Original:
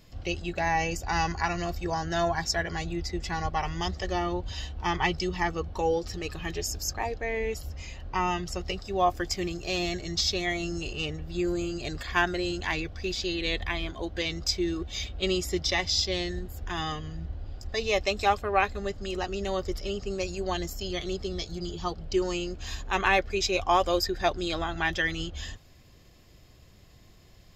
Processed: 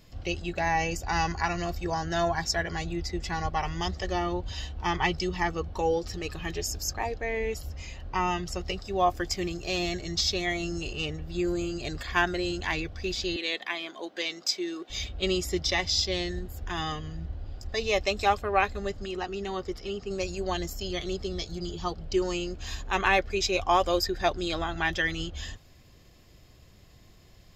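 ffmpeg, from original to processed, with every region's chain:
-filter_complex "[0:a]asettb=1/sr,asplit=3[a][b][c];[a]atrim=end=13.364[d];[b]atrim=start=13.36:end=14.9,asetpts=PTS-STARTPTS,afade=t=in:d=0.004:c=qsin,afade=t=out:st=1.536:d=0.004:c=qsin,highpass=f=230:w=0.5412,highpass=f=230:w=1.3066,lowshelf=f=430:g=-6.5[e];[c]atrim=start=14.896[f];[d][e]acrossfade=d=0.004:c1=hsin:c2=qsin[g];[g][f]acrossfade=d=0.004:c1=qsin:c2=hsin,asettb=1/sr,asplit=3[h][i][j];[h]atrim=end=19.054[k];[i]atrim=start=19.05:end=20.11,asetpts=PTS-STARTPTS,afade=t=in:d=0.004:c=qsin,afade=t=out:st=1.056:d=0.004:c=qsin,lowpass=f=3.6k:p=1,lowshelf=f=100:g=-10,bandreject=f=580:w=6.8[l];[j]atrim=start=20.106[m];[k][l]acrossfade=d=0.004:c1=hsin:c2=qsin[n];[n][m]acrossfade=d=0.004:c1=qsin:c2=hsin"

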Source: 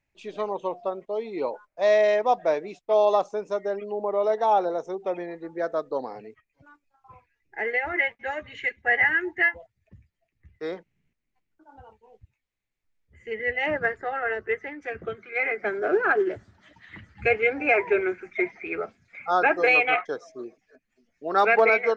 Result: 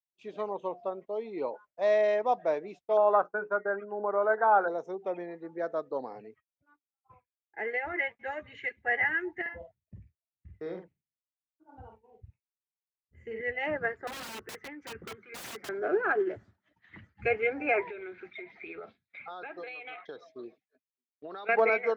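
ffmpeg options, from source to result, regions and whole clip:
-filter_complex "[0:a]asettb=1/sr,asplit=3[a][b][c];[a]atrim=end=2.974[d];[b]atrim=start=2.97:end=4.68,asetpts=PTS-STARTPTS,afade=t=in:d=0.004:c=qsin,afade=t=out:st=1.706:d=0.004:c=qsin,bandreject=f=60:t=h:w=6,bandreject=f=120:t=h:w=6,bandreject=f=180:t=h:w=6,bandreject=f=240:t=h:w=6,bandreject=f=300:t=h:w=6,bandreject=f=360:t=h:w=6,bandreject=f=420:t=h:w=6,bandreject=f=480:t=h:w=6,agate=range=-33dB:threshold=-35dB:ratio=3:release=100:detection=peak,lowpass=f=1.5k:t=q:w=13[e];[c]atrim=start=4.676[f];[d][e]acrossfade=d=0.004:c1=hsin:c2=qsin[g];[g][f]acrossfade=d=0.004:c1=qsin:c2=hsin,asettb=1/sr,asplit=3[h][i][j];[h]atrim=end=9.414[k];[i]atrim=start=9.41:end=13.41,asetpts=PTS-STARTPTS,afade=t=in:d=0.004:c=qsin,afade=t=out:st=3.996:d=0.004:c=qsin,lowshelf=f=470:g=8.5,acompressor=threshold=-32dB:ratio=2.5:attack=3.2:release=140:knee=1:detection=peak,asplit=2[l][m];[m]adelay=49,volume=-5dB[n];[l][n]amix=inputs=2:normalize=0,atrim=end_sample=176400[o];[j]atrim=start=13.406[p];[k][o]acrossfade=d=0.004:c1=hsin:c2=qsin[q];[q][p]acrossfade=d=0.004:c1=qsin:c2=hsin,asettb=1/sr,asplit=3[r][s][t];[r]atrim=end=14.074[u];[s]atrim=start=14.07:end=15.69,asetpts=PTS-STARTPTS,afade=t=in:d=0.004:c=qsin,afade=t=out:st=1.616:d=0.004:c=qsin,equalizer=f=660:w=6.3:g=-13,aeval=exprs='(mod(25.1*val(0)+1,2)-1)/25.1':c=same[v];[t]atrim=start=15.686[w];[u][v]acrossfade=d=0.004:c1=hsin:c2=qsin[x];[x][w]acrossfade=d=0.004:c1=qsin:c2=hsin,asettb=1/sr,asplit=3[y][z][aa];[y]atrim=end=17.824[ab];[z]atrim=start=17.82:end=21.49,asetpts=PTS-STARTPTS,afade=t=in:d=0.004:c=qsin,afade=t=out:st=3.666:d=0.004:c=qsin,lowpass=f=3.8k:t=q:w=6.1,acompressor=threshold=-32dB:ratio=16:attack=3.2:release=140:knee=1:detection=peak[ac];[aa]atrim=start=21.486[ad];[ab][ac]acrossfade=d=0.004:c1=hsin:c2=qsin[ae];[ae][ad]acrossfade=d=0.004:c1=qsin:c2=hsin,highpass=65,agate=range=-33dB:threshold=-45dB:ratio=3:detection=peak,highshelf=f=3.6k:g=-9,volume=-5dB"

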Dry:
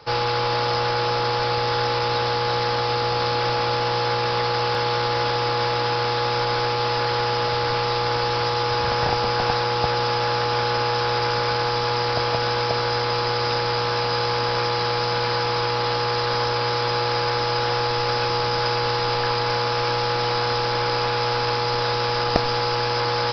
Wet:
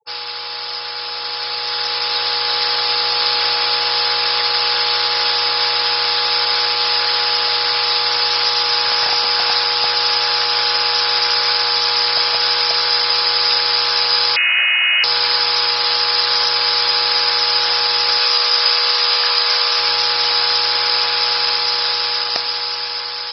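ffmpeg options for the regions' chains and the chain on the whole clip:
-filter_complex "[0:a]asettb=1/sr,asplit=3[a][b][c];[a]atrim=end=14.364[d];[b]atrim=start=14.36:end=15.04,asetpts=PTS-STARTPTS,afade=t=in:d=0.004:c=qsin,afade=t=out:st=0.676:d=0.004:c=qsin,asubboost=boost=8.5:cutoff=150,lowpass=f=2.6k:t=q:w=0.5098,lowpass=f=2.6k:t=q:w=0.6013,lowpass=f=2.6k:t=q:w=0.9,lowpass=f=2.6k:t=q:w=2.563,afreqshift=-3000[e];[c]atrim=start=15.036[f];[d][e]acrossfade=d=0.004:c1=hsin:c2=qsin[g];[g][f]acrossfade=d=0.004:c1=qsin:c2=hsin,asettb=1/sr,asplit=3[h][i][j];[h]atrim=end=18.194[k];[i]atrim=start=18.19:end=19.79,asetpts=PTS-STARTPTS,afade=t=in:d=0.004:c=qsin,afade=t=out:st=1.596:d=0.004:c=qsin,highpass=f=310:p=1,asplit=2[l][m];[m]adelay=15,volume=-8.5dB[n];[l][n]amix=inputs=2:normalize=0,atrim=end_sample=70560[o];[j]atrim=start=19.786[p];[k][o]acrossfade=d=0.004:c1=hsin:c2=qsin[q];[q][p]acrossfade=d=0.004:c1=qsin:c2=hsin,afftfilt=real='re*gte(hypot(re,im),0.0282)':imag='im*gte(hypot(re,im),0.0282)':win_size=1024:overlap=0.75,aderivative,dynaudnorm=f=550:g=7:m=10dB,volume=8dB"

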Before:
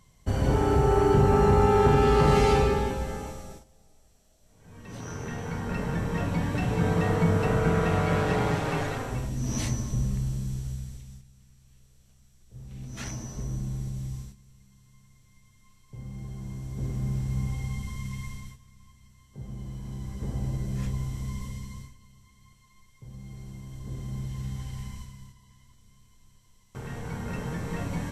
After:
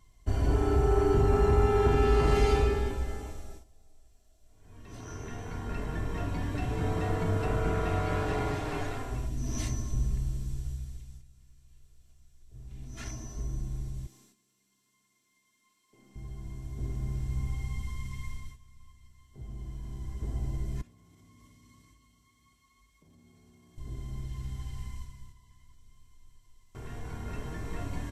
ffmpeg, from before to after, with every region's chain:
-filter_complex "[0:a]asettb=1/sr,asplit=3[a][b][c];[a]atrim=end=14.064[d];[b]atrim=start=14.06:end=16.16,asetpts=PTS-STARTPTS,afade=t=in:d=0.004:c=qsin,afade=t=out:st=2.096:d=0.004:c=qsin,highpass=f=230:w=0.5412,highpass=f=230:w=1.3066,equalizer=f=830:w=0.53:g=-3,aeval=exprs='(tanh(141*val(0)+0.2)-tanh(0.2))/141':c=same[e];[c]atrim=start=16.156[f];[d][e]acrossfade=d=0.004:c1=hsin:c2=qsin[g];[g][f]acrossfade=d=0.004:c1=qsin:c2=hsin,asettb=1/sr,asplit=3[h][i][j];[h]atrim=end=20.814[k];[i]atrim=start=20.81:end=23.78,asetpts=PTS-STARTPTS,afade=t=in:d=0.004:c=qsin,afade=t=out:st=2.966:d=0.004:c=qsin,lowshelf=f=100:g=-12,acompressor=threshold=-48dB:ratio=20:attack=3.2:release=140:knee=1:detection=peak,afreqshift=40[l];[j]atrim=start=23.776[m];[k][l]acrossfade=d=0.004:c1=hsin:c2=qsin[n];[n][m]acrossfade=d=0.004:c1=qsin:c2=hsin,lowshelf=f=75:g=8,aecho=1:1:2.9:0.55,volume=-6.5dB"

